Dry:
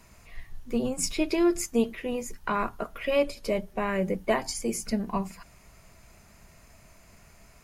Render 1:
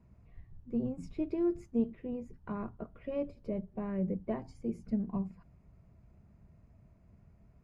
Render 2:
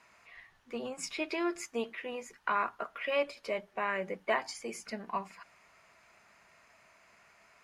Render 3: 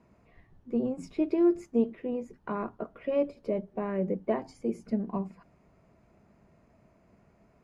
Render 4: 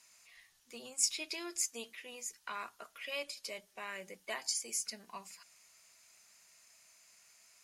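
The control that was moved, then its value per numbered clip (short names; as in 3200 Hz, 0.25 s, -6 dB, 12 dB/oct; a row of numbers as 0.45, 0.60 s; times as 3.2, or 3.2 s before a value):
band-pass, frequency: 110, 1600, 300, 6500 Hz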